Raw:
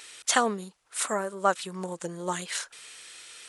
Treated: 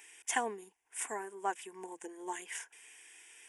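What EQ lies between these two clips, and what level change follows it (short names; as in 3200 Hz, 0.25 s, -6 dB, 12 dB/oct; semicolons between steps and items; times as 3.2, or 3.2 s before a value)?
HPF 190 Hz 6 dB/oct; fixed phaser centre 850 Hz, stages 8; -6.0 dB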